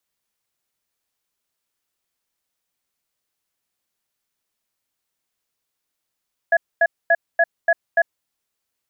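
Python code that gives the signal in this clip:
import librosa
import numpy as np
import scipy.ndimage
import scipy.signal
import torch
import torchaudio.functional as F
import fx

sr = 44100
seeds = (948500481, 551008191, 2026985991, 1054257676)

y = fx.cadence(sr, length_s=1.74, low_hz=673.0, high_hz=1680.0, on_s=0.05, off_s=0.24, level_db=-14.5)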